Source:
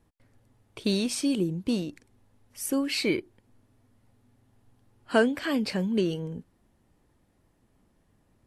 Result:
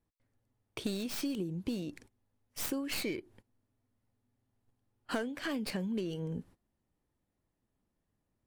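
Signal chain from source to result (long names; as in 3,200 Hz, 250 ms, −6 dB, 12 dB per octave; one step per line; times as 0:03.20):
stylus tracing distortion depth 0.15 ms
noise gate −54 dBFS, range −18 dB
downward compressor 6 to 1, threshold −36 dBFS, peak gain reduction 18 dB
level +2.5 dB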